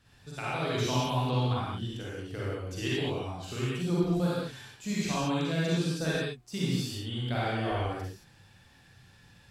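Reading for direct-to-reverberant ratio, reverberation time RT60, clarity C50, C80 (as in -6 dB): -8.0 dB, no single decay rate, -5.0 dB, -1.0 dB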